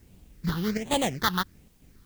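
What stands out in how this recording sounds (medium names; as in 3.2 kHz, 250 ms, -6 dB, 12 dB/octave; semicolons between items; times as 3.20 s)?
aliases and images of a low sample rate 2.6 kHz, jitter 20%; phasing stages 6, 1.3 Hz, lowest notch 600–1500 Hz; chopped level 1.1 Hz, depth 65%, duty 85%; a quantiser's noise floor 12-bit, dither triangular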